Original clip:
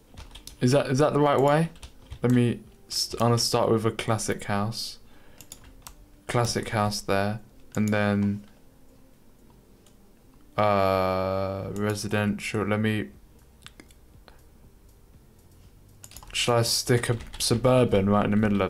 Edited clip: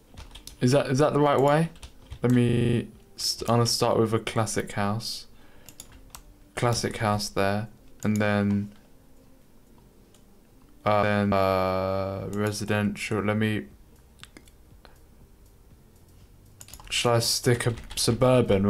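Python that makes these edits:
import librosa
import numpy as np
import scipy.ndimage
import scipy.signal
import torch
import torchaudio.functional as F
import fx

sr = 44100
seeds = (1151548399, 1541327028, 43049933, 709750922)

y = fx.edit(x, sr, fx.stutter(start_s=2.45, slice_s=0.04, count=8),
    fx.duplicate(start_s=7.93, length_s=0.29, to_s=10.75), tone=tone)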